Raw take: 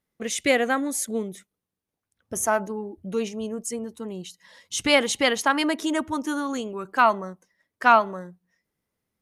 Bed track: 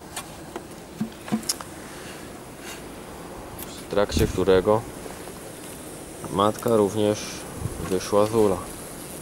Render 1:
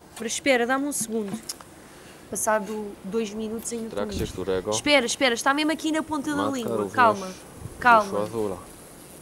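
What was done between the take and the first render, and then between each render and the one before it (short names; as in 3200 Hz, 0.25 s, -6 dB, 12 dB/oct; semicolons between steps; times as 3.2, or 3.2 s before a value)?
add bed track -8 dB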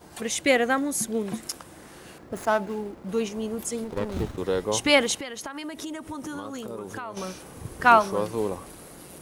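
2.18–3.09 median filter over 15 samples; 3.84–4.38 running maximum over 17 samples; 5.17–7.17 compressor 12:1, threshold -31 dBFS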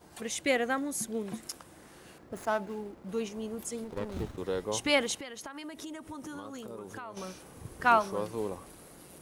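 gain -7 dB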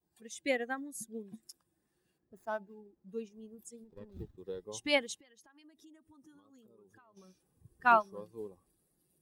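per-bin expansion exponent 1.5; upward expander 1.5:1, over -43 dBFS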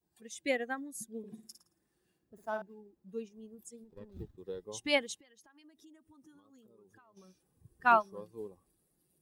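1.18–2.62 flutter echo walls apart 9.5 m, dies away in 0.4 s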